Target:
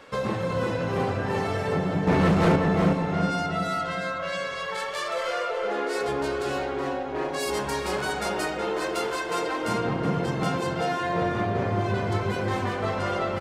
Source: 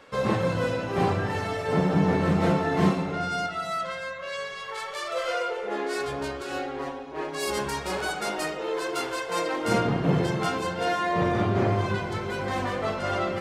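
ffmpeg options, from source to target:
-filter_complex "[0:a]acompressor=threshold=-30dB:ratio=2.5,asettb=1/sr,asplit=3[a][b][c];[a]atrim=end=2.074[d];[b]atrim=start=2.07:end=2.56,asetpts=PTS-STARTPTS,afade=t=in:d=0.004:c=qsin,afade=t=out:st=0.486:d=0.004:c=qsin,aeval=exprs='0.112*sin(PI/2*2*val(0)/0.112)':c=same[e];[c]atrim=start=2.556[f];[d][e]acrossfade=d=0.004:c1=hsin:c2=qsin[g];[g][f]acrossfade=d=0.004:c1=qsin:c2=hsin,asplit=2[h][i];[i]adelay=372,lowpass=f=1.8k:p=1,volume=-3dB,asplit=2[j][k];[k]adelay=372,lowpass=f=1.8k:p=1,volume=0.44,asplit=2[l][m];[m]adelay=372,lowpass=f=1.8k:p=1,volume=0.44,asplit=2[n][o];[o]adelay=372,lowpass=f=1.8k:p=1,volume=0.44,asplit=2[p][q];[q]adelay=372,lowpass=f=1.8k:p=1,volume=0.44,asplit=2[r][s];[s]adelay=372,lowpass=f=1.8k:p=1,volume=0.44[t];[h][j][l][n][p][r][t]amix=inputs=7:normalize=0,volume=3dB"

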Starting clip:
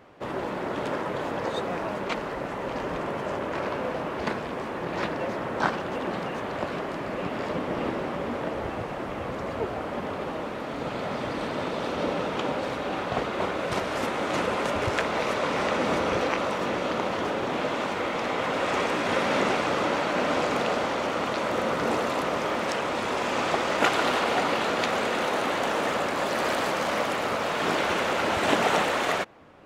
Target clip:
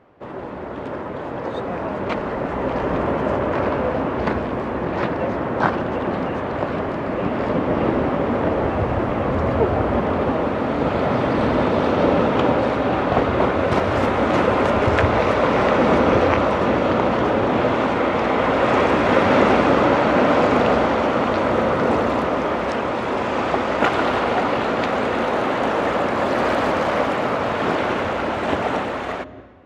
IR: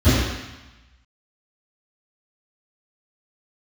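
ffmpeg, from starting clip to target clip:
-filter_complex "[0:a]lowpass=f=1.5k:p=1,dynaudnorm=f=260:g=17:m=12.5dB,asplit=2[a][b];[1:a]atrim=start_sample=2205,adelay=142[c];[b][c]afir=irnorm=-1:irlink=0,volume=-39.5dB[d];[a][d]amix=inputs=2:normalize=0"

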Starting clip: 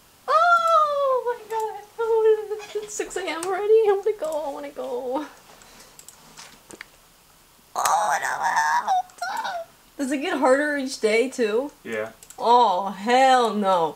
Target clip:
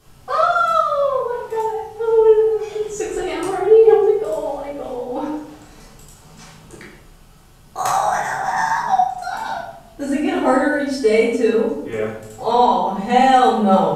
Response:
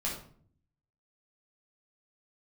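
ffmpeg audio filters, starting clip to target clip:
-filter_complex "[0:a]lowshelf=f=330:g=11[a];[1:a]atrim=start_sample=2205,asetrate=28665,aresample=44100[b];[a][b]afir=irnorm=-1:irlink=0,volume=-6.5dB"

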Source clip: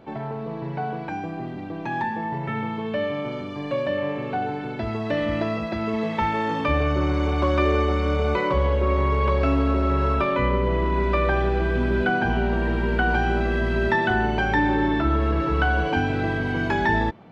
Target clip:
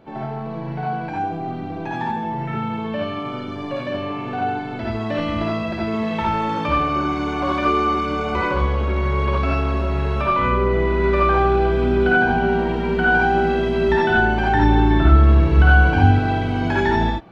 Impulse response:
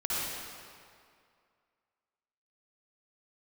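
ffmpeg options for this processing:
-filter_complex "[0:a]asettb=1/sr,asplit=3[a][b][c];[a]atrim=end=14.544[d];[b]atrim=start=14.54:end=16.12,asetpts=PTS-STARTPTS,afade=t=in:d=0.004:c=qsin,afade=t=out:st=1.576:d=0.004:c=qsin,equalizer=f=79:w=0.67:g=10.5[e];[c]atrim=start=16.116[f];[d][e]acrossfade=d=0.004:c1=hsin:c2=qsin[g];[g][f]acrossfade=d=0.004:c1=qsin:c2=hsin[h];[1:a]atrim=start_sample=2205,atrim=end_sample=4410[i];[h][i]afir=irnorm=-1:irlink=0"

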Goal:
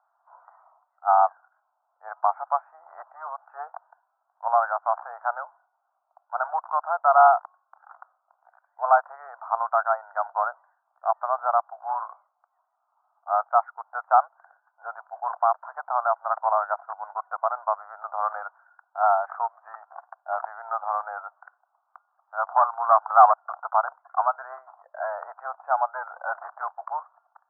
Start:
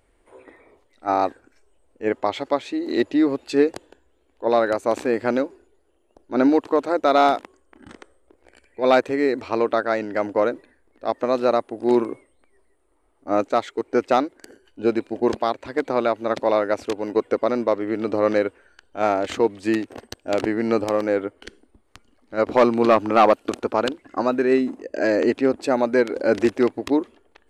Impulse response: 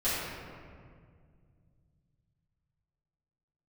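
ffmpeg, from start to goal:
-filter_complex "[0:a]asplit=2[a][b];[b]aeval=exprs='clip(val(0),-1,0.168)':c=same,volume=-4.5dB[c];[a][c]amix=inputs=2:normalize=0,asuperpass=centerf=1000:order=12:qfactor=1.3"

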